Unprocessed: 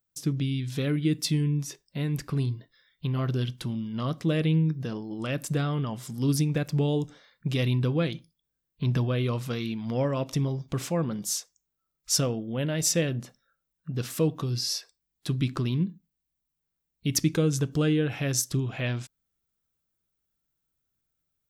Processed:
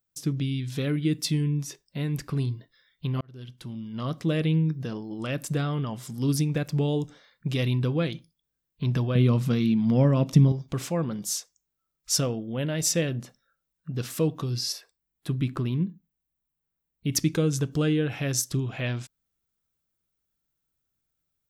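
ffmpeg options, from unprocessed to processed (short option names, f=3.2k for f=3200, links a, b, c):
-filter_complex "[0:a]asettb=1/sr,asplit=3[a][b][c];[a]atrim=end=9.154[d];[b]atrim=start=9.15:end=10.52,asetpts=PTS-STARTPTS,afade=t=in:d=0.004:c=qsin,afade=t=out:st=1.366:d=0.004:c=qsin,equalizer=f=180:w=1.1:g=13.5[e];[c]atrim=start=10.516[f];[d][e]acrossfade=d=0.004:c1=hsin:c2=qsin[g];[g][f]acrossfade=d=0.004:c1=qsin:c2=hsin,asettb=1/sr,asplit=3[h][i][j];[h]atrim=end=14.724[k];[i]atrim=start=14.72:end=17.12,asetpts=PTS-STARTPTS,afade=t=in:d=0.004:c=qsin,afade=t=out:st=2.396:d=0.004:c=qsin,equalizer=f=5.4k:t=o:w=1.4:g=-9.5[l];[j]atrim=start=17.116[m];[k][l]acrossfade=d=0.004:c1=hsin:c2=qsin[n];[n][m]acrossfade=d=0.004:c1=qsin:c2=hsin,asplit=2[o][p];[o]atrim=end=3.21,asetpts=PTS-STARTPTS,afade=t=out:st=3.206:d=0.004:c=hsin[q];[p]atrim=start=3.21,asetpts=PTS-STARTPTS,afade=t=in:d=0.96[r];[q][r]concat=n=2:v=0:a=1"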